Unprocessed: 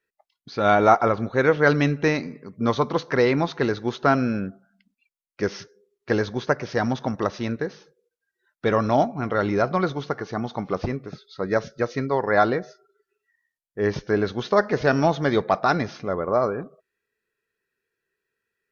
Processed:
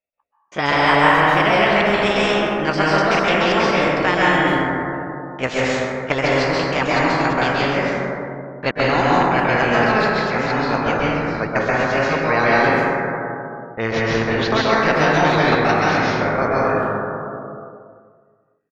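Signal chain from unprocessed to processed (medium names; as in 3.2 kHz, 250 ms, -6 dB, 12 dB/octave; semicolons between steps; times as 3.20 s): pitch bend over the whole clip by +6 st ending unshifted; low-pass that closes with the level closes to 2.7 kHz, closed at -20 dBFS; gate with hold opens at -44 dBFS; level-controlled noise filter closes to 1.7 kHz, open at -17 dBFS; trance gate "xxx.x.xx" 174 bpm -60 dB; speakerphone echo 260 ms, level -23 dB; reverberation RT60 1.7 s, pre-delay 123 ms, DRR -8.5 dB; spectrum-flattening compressor 2:1; trim -6 dB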